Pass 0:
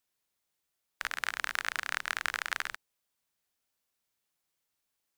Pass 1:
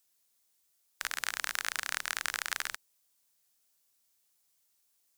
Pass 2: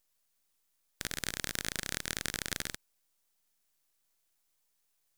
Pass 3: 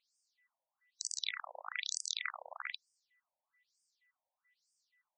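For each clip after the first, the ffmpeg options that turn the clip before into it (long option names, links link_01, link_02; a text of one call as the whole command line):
ffmpeg -i in.wav -filter_complex "[0:a]asplit=2[link_01][link_02];[link_02]alimiter=limit=-20dB:level=0:latency=1:release=40,volume=2dB[link_03];[link_01][link_03]amix=inputs=2:normalize=0,bass=frequency=250:gain=-2,treble=frequency=4000:gain=10,volume=-6.5dB" out.wav
ffmpeg -i in.wav -af "aeval=exprs='max(val(0),0)':channel_layout=same" out.wav
ffmpeg -i in.wav -af "afftfilt=real='real(if(lt(b,920),b+92*(1-2*mod(floor(b/92),2)),b),0)':imag='imag(if(lt(b,920),b+92*(1-2*mod(floor(b/92),2)),b),0)':win_size=2048:overlap=0.75,afftfilt=real='re*between(b*sr/1024,690*pow(6700/690,0.5+0.5*sin(2*PI*1.1*pts/sr))/1.41,690*pow(6700/690,0.5+0.5*sin(2*PI*1.1*pts/sr))*1.41)':imag='im*between(b*sr/1024,690*pow(6700/690,0.5+0.5*sin(2*PI*1.1*pts/sr))/1.41,690*pow(6700/690,0.5+0.5*sin(2*PI*1.1*pts/sr))*1.41)':win_size=1024:overlap=0.75,volume=4dB" out.wav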